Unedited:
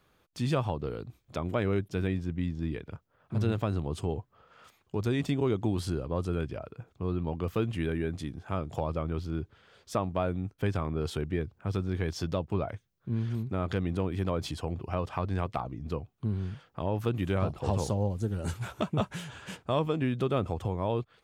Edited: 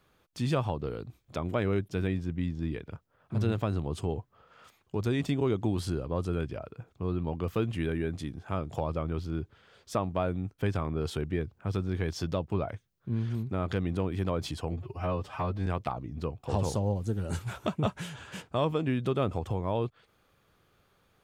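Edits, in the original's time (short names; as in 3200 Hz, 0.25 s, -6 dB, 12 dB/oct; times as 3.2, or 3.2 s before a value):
14.72–15.35 stretch 1.5×
16.12–17.58 cut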